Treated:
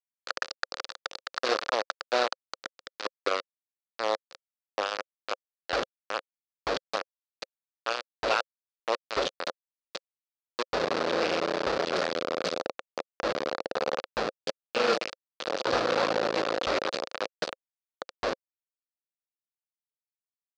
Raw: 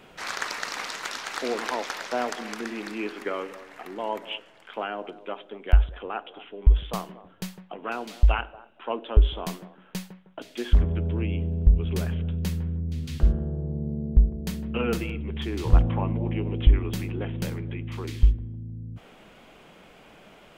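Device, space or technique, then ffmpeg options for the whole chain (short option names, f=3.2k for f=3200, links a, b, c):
hand-held game console: -filter_complex "[0:a]asettb=1/sr,asplit=3[a][b][c];[a]atrim=end=16.064[d];[b]atrim=start=16.06:end=16.89,asetpts=PTS-STARTPTS,afade=t=in:d=0.004:c=qsin,afade=t=out:st=0.826:d=0.004:c=qsin,equalizer=f=700:t=o:w=1:g=4.5[e];[c]atrim=start=16.886[f];[d][e]acrossfade=d=0.004:c1=hsin:c2=qsin[g];[g][f]acrossfade=d=0.004:c1=qsin:c2=hsin,acrusher=bits=3:mix=0:aa=0.000001,highpass=450,equalizer=f=530:t=q:w=4:g=8,equalizer=f=910:t=q:w=4:g=-4,equalizer=f=1.3k:t=q:w=4:g=3,equalizer=f=2.1k:t=q:w=4:g=-4,equalizer=f=3.1k:t=q:w=4:g=-4,equalizer=f=4.5k:t=q:w=4:g=3,lowpass=f=5k:w=0.5412,lowpass=f=5k:w=1.3066,volume=1.5dB"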